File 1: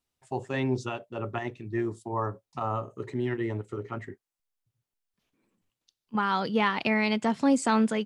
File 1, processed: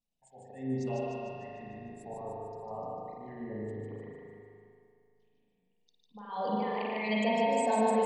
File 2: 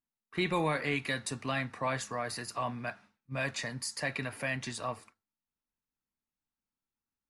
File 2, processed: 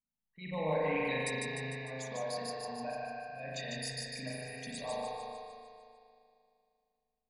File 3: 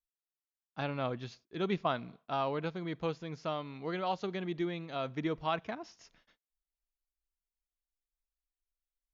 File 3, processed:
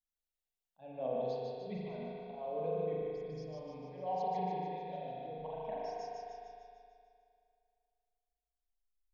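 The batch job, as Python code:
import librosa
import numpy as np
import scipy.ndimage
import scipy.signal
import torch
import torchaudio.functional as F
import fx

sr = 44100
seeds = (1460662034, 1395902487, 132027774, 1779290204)

p1 = fx.envelope_sharpen(x, sr, power=2.0)
p2 = fx.auto_swell(p1, sr, attack_ms=279.0)
p3 = fx.fixed_phaser(p2, sr, hz=350.0, stages=6)
p4 = p3 + fx.echo_feedback(p3, sr, ms=150, feedback_pct=56, wet_db=-3, dry=0)
p5 = fx.rev_spring(p4, sr, rt60_s=2.4, pass_ms=(38,), chirp_ms=20, drr_db=-4.5)
y = F.gain(torch.from_numpy(p5), -4.0).numpy()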